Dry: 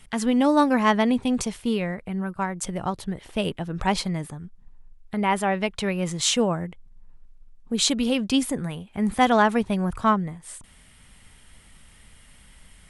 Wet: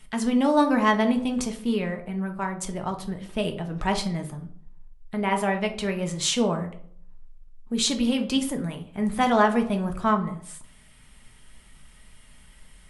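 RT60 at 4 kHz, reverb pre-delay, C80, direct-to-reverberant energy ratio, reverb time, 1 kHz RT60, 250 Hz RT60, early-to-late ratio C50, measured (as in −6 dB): 0.35 s, 3 ms, 15.5 dB, 4.0 dB, 0.55 s, 0.55 s, 0.55 s, 11.5 dB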